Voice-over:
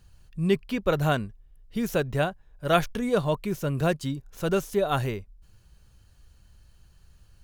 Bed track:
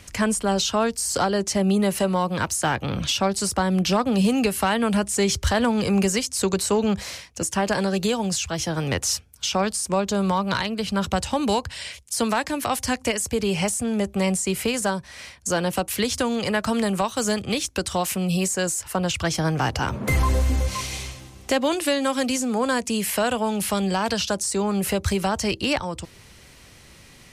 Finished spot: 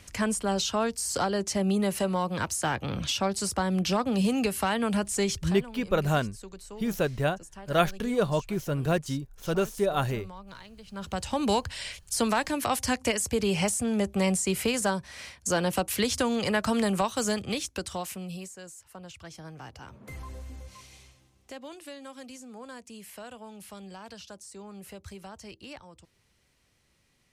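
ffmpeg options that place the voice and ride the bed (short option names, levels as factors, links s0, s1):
-filter_complex "[0:a]adelay=5050,volume=0.841[s0];[1:a]volume=5.01,afade=t=out:st=5.23:d=0.35:silence=0.141254,afade=t=in:st=10.87:d=0.64:silence=0.105925,afade=t=out:st=16.99:d=1.55:silence=0.125893[s1];[s0][s1]amix=inputs=2:normalize=0"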